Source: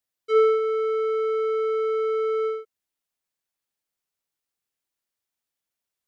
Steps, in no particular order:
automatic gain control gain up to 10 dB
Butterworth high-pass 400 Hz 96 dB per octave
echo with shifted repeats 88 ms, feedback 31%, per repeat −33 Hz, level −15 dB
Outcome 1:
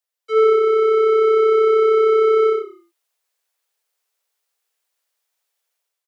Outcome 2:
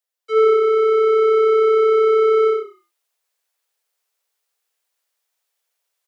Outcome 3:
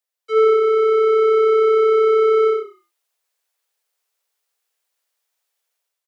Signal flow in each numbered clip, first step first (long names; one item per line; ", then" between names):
automatic gain control, then Butterworth high-pass, then echo with shifted repeats
echo with shifted repeats, then automatic gain control, then Butterworth high-pass
automatic gain control, then echo with shifted repeats, then Butterworth high-pass